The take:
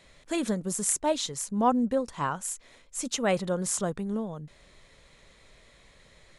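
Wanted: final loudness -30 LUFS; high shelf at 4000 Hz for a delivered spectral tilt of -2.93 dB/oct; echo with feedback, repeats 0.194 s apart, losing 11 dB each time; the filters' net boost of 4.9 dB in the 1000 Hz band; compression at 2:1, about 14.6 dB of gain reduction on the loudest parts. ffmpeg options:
-af "equalizer=f=1k:t=o:g=5.5,highshelf=f=4k:g=8.5,acompressor=threshold=-42dB:ratio=2,aecho=1:1:194|388|582:0.282|0.0789|0.0221,volume=6dB"

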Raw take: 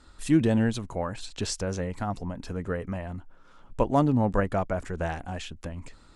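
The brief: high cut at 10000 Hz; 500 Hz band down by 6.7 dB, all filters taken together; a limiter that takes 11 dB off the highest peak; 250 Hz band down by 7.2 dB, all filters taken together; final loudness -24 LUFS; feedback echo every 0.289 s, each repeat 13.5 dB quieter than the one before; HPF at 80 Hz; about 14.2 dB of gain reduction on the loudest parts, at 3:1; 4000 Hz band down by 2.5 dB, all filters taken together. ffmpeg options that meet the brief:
-af "highpass=80,lowpass=10k,equalizer=f=250:t=o:g=-7.5,equalizer=f=500:t=o:g=-6.5,equalizer=f=4k:t=o:g=-3,acompressor=threshold=-42dB:ratio=3,alimiter=level_in=14dB:limit=-24dB:level=0:latency=1,volume=-14dB,aecho=1:1:289|578:0.211|0.0444,volume=24dB"

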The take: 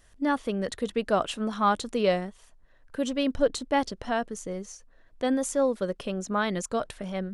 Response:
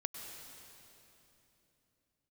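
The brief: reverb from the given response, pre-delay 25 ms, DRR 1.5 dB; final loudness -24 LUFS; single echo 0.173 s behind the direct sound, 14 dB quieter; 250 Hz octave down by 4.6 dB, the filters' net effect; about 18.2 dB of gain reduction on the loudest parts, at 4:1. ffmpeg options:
-filter_complex "[0:a]equalizer=f=250:t=o:g=-5.5,acompressor=threshold=-42dB:ratio=4,aecho=1:1:173:0.2,asplit=2[a][b];[1:a]atrim=start_sample=2205,adelay=25[c];[b][c]afir=irnorm=-1:irlink=0,volume=-1dB[d];[a][d]amix=inputs=2:normalize=0,volume=17.5dB"

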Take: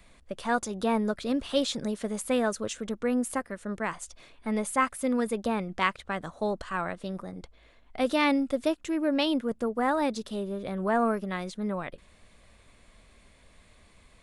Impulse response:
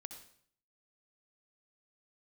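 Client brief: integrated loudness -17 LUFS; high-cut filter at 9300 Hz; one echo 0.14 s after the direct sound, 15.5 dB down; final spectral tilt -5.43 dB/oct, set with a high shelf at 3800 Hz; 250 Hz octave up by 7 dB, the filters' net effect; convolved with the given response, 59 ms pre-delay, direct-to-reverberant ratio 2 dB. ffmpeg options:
-filter_complex "[0:a]lowpass=9.3k,equalizer=f=250:t=o:g=8,highshelf=f=3.8k:g=-7,aecho=1:1:140:0.168,asplit=2[a][b];[1:a]atrim=start_sample=2205,adelay=59[c];[b][c]afir=irnorm=-1:irlink=0,volume=3dB[d];[a][d]amix=inputs=2:normalize=0,volume=6dB"

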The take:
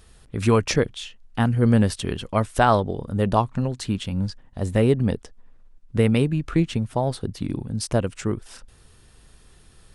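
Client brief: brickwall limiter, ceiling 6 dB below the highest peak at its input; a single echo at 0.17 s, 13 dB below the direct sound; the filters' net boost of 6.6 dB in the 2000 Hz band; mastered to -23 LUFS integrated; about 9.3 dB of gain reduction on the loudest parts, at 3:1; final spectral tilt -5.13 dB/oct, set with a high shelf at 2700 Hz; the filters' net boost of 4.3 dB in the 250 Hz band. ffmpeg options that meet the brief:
-af "equalizer=f=250:t=o:g=5,equalizer=f=2k:t=o:g=6,highshelf=f=2.7k:g=6.5,acompressor=threshold=-23dB:ratio=3,alimiter=limit=-16.5dB:level=0:latency=1,aecho=1:1:170:0.224,volume=5.5dB"

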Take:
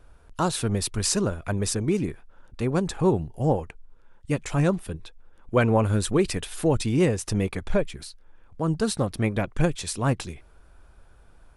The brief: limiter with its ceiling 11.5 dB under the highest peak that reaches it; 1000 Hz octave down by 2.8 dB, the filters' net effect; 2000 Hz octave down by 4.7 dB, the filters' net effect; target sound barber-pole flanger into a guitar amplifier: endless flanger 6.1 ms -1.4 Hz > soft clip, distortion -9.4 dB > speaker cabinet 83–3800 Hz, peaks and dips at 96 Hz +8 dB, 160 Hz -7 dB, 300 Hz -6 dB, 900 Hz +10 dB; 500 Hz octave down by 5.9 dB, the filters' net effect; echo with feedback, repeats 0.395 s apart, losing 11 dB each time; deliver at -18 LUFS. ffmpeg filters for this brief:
-filter_complex "[0:a]equalizer=f=500:t=o:g=-5,equalizer=f=1k:t=o:g=-8,equalizer=f=2k:t=o:g=-3.5,alimiter=limit=-20dB:level=0:latency=1,aecho=1:1:395|790|1185:0.282|0.0789|0.0221,asplit=2[a][b];[b]adelay=6.1,afreqshift=-1.4[c];[a][c]amix=inputs=2:normalize=1,asoftclip=threshold=-31.5dB,highpass=83,equalizer=f=96:t=q:w=4:g=8,equalizer=f=160:t=q:w=4:g=-7,equalizer=f=300:t=q:w=4:g=-6,equalizer=f=900:t=q:w=4:g=10,lowpass=f=3.8k:w=0.5412,lowpass=f=3.8k:w=1.3066,volume=21.5dB"

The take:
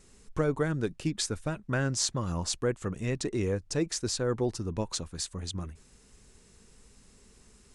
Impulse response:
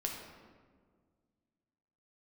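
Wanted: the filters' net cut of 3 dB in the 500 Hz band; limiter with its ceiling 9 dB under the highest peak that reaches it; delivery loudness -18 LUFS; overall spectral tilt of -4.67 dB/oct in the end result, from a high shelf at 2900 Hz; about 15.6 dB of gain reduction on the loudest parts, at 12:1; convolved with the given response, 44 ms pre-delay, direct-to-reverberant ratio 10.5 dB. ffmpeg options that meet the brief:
-filter_complex "[0:a]equalizer=f=500:t=o:g=-3.5,highshelf=f=2.9k:g=-4.5,acompressor=threshold=-41dB:ratio=12,alimiter=level_in=12.5dB:limit=-24dB:level=0:latency=1,volume=-12.5dB,asplit=2[a][b];[1:a]atrim=start_sample=2205,adelay=44[c];[b][c]afir=irnorm=-1:irlink=0,volume=-12dB[d];[a][d]amix=inputs=2:normalize=0,volume=29.5dB"

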